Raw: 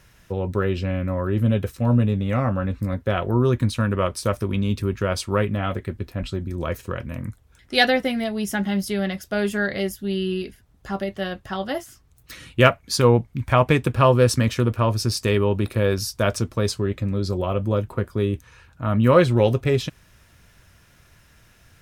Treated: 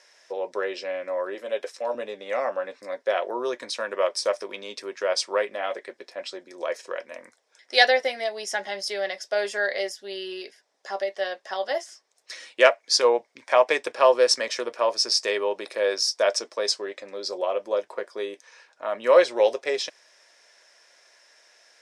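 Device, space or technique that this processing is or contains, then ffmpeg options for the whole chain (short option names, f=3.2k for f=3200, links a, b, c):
phone speaker on a table: -filter_complex "[0:a]asettb=1/sr,asplit=3[a][b][c];[a]atrim=end=1.354[d];[b]atrim=start=1.35:end=1.95,asetpts=PTS-STARTPTS,afade=t=in:d=0.004:c=qsin,afade=t=out:st=0.596:d=0.004:c=qsin,highpass=290[e];[c]atrim=start=1.946[f];[d][e]acrossfade=d=0.004:c1=hsin:c2=qsin[g];[g][f]acrossfade=d=0.004:c1=qsin:c2=hsin,highpass=f=470:w=0.5412,highpass=f=470:w=1.3066,equalizer=f=590:t=q:w=4:g=4,equalizer=f=1.3k:t=q:w=4:g=-7,equalizer=f=1.9k:t=q:w=4:g=3,equalizer=f=2.8k:t=q:w=4:g=-4,equalizer=f=5.3k:t=q:w=4:g=9,lowpass=f=8.7k:w=0.5412,lowpass=f=8.7k:w=1.3066"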